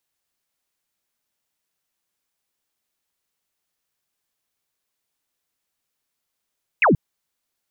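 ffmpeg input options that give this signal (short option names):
-f lavfi -i "aevalsrc='0.251*clip(t/0.002,0,1)*clip((0.13-t)/0.002,0,1)*sin(2*PI*2800*0.13/log(120/2800)*(exp(log(120/2800)*t/0.13)-1))':d=0.13:s=44100"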